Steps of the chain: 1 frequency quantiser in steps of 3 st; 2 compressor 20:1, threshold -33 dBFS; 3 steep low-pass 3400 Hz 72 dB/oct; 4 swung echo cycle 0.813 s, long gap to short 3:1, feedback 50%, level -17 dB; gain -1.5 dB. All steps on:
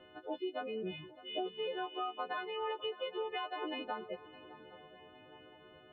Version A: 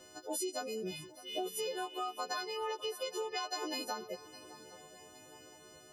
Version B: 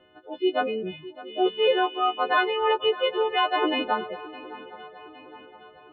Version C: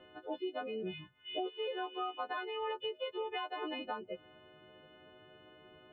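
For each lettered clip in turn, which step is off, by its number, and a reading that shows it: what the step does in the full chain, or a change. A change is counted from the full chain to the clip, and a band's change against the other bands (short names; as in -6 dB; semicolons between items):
3, 4 kHz band +3.0 dB; 2, mean gain reduction 10.5 dB; 4, echo-to-direct -14.0 dB to none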